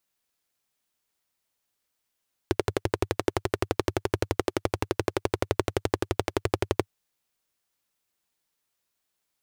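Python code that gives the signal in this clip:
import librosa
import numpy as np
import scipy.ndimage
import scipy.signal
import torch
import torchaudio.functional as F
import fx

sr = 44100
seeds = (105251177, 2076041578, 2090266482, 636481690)

y = fx.engine_single(sr, seeds[0], length_s=4.37, rpm=1400, resonances_hz=(100.0, 370.0))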